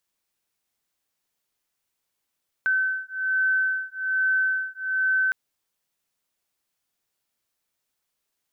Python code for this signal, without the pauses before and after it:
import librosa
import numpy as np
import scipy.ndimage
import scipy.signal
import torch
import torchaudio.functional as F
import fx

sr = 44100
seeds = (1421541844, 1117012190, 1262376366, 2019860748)

y = fx.two_tone_beats(sr, length_s=2.66, hz=1530.0, beat_hz=1.2, level_db=-24.5)